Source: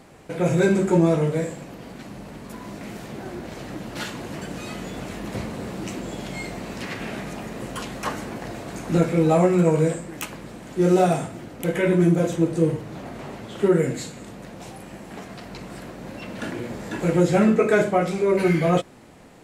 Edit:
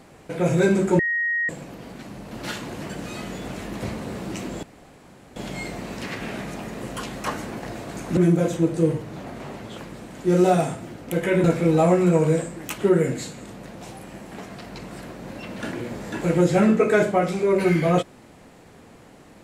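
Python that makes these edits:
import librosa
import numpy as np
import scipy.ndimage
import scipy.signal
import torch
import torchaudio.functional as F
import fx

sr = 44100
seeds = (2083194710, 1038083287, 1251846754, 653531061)

y = fx.edit(x, sr, fx.bleep(start_s=0.99, length_s=0.5, hz=1880.0, db=-20.5),
    fx.cut(start_s=2.31, length_s=1.52),
    fx.insert_room_tone(at_s=6.15, length_s=0.73),
    fx.swap(start_s=8.96, length_s=1.34, other_s=11.96, other_length_s=1.61), tone=tone)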